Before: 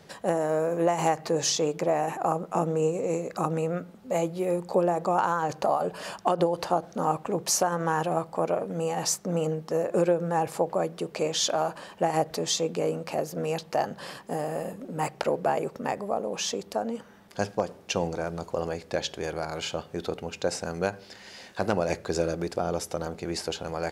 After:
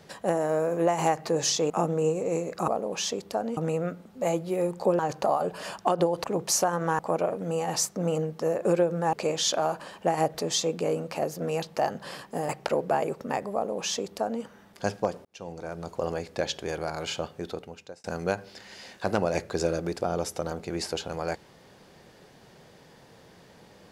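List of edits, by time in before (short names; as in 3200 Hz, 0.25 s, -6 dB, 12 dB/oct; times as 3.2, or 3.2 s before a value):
1.7–2.48 cut
4.88–5.39 cut
6.64–7.23 cut
7.98–8.28 cut
10.42–11.09 cut
14.45–15.04 cut
16.09–16.98 copy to 3.46
17.8–18.6 fade in
19.79–20.59 fade out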